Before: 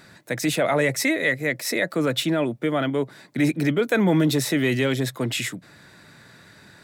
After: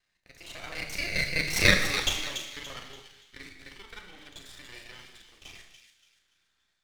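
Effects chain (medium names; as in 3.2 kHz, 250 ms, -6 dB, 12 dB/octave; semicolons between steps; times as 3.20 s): time reversed locally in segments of 31 ms; Doppler pass-by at 1.70 s, 24 m/s, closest 2.2 m; level rider gain up to 10 dB; band-pass filter 3 kHz, Q 1.4; half-wave rectifier; feedback echo behind a high-pass 287 ms, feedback 34%, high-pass 2.8 kHz, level -6.5 dB; gated-style reverb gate 330 ms falling, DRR 3.5 dB; trim +7.5 dB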